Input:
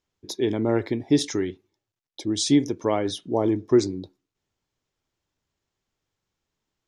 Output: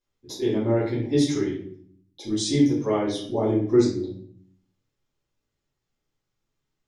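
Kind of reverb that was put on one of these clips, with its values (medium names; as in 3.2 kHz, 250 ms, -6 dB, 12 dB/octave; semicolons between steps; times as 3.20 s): simulated room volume 83 m³, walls mixed, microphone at 2.1 m; trim -10.5 dB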